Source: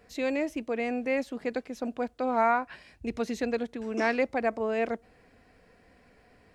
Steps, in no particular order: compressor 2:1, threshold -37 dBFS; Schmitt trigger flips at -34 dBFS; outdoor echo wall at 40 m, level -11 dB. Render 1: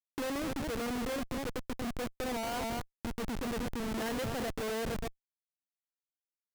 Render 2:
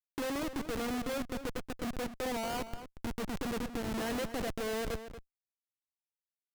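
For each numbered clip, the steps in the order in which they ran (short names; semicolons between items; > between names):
outdoor echo > Schmitt trigger > compressor; Schmitt trigger > compressor > outdoor echo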